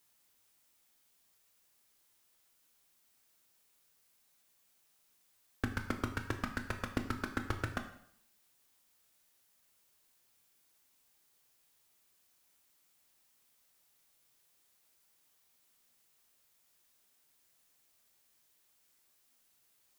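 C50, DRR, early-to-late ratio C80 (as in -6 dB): 10.0 dB, 5.5 dB, 12.5 dB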